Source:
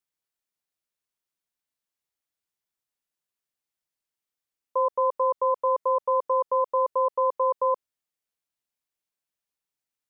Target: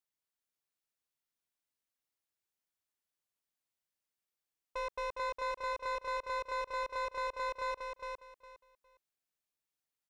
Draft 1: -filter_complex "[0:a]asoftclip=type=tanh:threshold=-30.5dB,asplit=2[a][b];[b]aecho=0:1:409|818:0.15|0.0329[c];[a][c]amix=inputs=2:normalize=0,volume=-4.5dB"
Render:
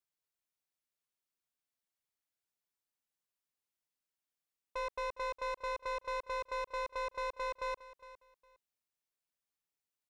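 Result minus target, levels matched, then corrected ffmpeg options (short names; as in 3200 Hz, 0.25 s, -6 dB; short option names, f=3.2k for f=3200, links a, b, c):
echo-to-direct -12 dB
-filter_complex "[0:a]asoftclip=type=tanh:threshold=-30.5dB,asplit=2[a][b];[b]aecho=0:1:409|818|1227:0.596|0.131|0.0288[c];[a][c]amix=inputs=2:normalize=0,volume=-4.5dB"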